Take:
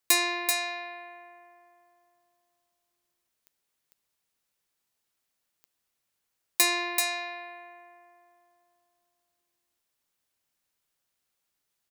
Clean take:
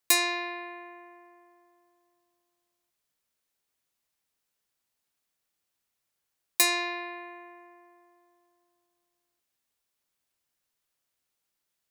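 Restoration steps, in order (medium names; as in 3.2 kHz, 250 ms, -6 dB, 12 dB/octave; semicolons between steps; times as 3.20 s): de-click; inverse comb 385 ms -4.5 dB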